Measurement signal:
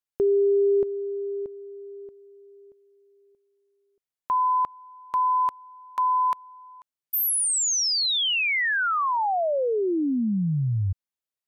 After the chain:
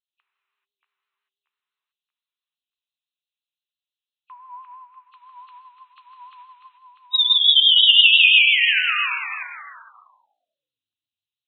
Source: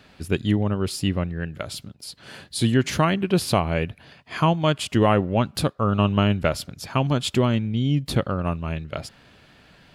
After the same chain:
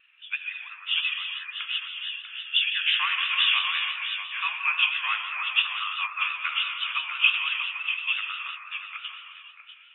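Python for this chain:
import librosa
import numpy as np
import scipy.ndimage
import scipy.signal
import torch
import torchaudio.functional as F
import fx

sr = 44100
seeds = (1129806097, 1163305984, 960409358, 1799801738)

y = fx.freq_compress(x, sr, knee_hz=2400.0, ratio=4.0)
y = scipy.signal.sosfilt(scipy.signal.ellip(4, 1.0, 60, 1100.0, 'highpass', fs=sr, output='sos'), y)
y = fx.peak_eq(y, sr, hz=2700.0, db=11.5, octaves=1.1)
y = y + 10.0 ** (-6.5 / 20.0) * np.pad(y, (int(643 * sr / 1000.0), 0))[:len(y)]
y = fx.rev_gated(y, sr, seeds[0], gate_ms=460, shape='flat', drr_db=0.0)
y = fx.vibrato(y, sr, rate_hz=5.9, depth_cents=59.0)
y = fx.upward_expand(y, sr, threshold_db=-34.0, expansion=1.5)
y = F.gain(torch.from_numpy(y), -4.5).numpy()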